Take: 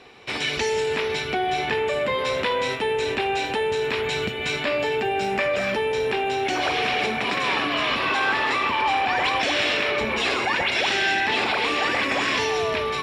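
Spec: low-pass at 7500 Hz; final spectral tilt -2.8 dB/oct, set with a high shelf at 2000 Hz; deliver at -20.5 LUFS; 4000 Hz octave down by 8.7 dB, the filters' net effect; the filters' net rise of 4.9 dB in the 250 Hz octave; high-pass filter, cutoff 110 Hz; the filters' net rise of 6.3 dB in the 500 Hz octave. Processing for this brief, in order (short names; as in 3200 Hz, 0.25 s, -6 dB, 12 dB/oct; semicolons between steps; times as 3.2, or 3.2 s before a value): HPF 110 Hz; LPF 7500 Hz; bell 250 Hz +4 dB; bell 500 Hz +7 dB; high shelf 2000 Hz -8.5 dB; bell 4000 Hz -3.5 dB; gain +1 dB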